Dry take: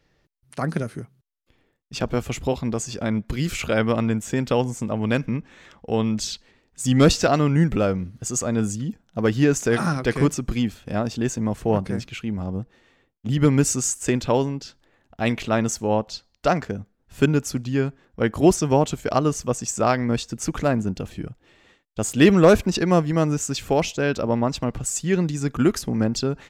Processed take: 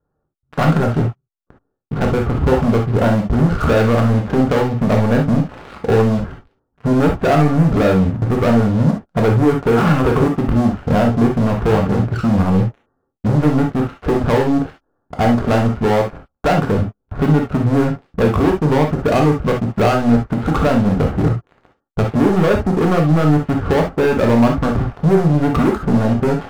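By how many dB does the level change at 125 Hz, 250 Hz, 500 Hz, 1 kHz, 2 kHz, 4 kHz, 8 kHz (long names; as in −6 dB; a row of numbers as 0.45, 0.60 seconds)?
+8.5 dB, +7.0 dB, +6.0 dB, +7.5 dB, +4.5 dB, −0.5 dB, below −10 dB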